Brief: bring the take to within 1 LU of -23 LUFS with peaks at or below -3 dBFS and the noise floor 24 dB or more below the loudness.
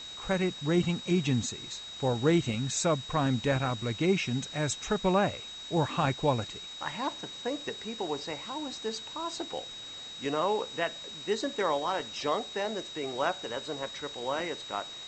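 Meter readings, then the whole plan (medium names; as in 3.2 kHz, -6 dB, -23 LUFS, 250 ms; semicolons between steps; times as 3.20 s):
steady tone 3.8 kHz; tone level -41 dBFS; noise floor -43 dBFS; noise floor target -55 dBFS; loudness -31.0 LUFS; peak level -14.0 dBFS; loudness target -23.0 LUFS
-> band-stop 3.8 kHz, Q 30; noise reduction 12 dB, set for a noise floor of -43 dBFS; trim +8 dB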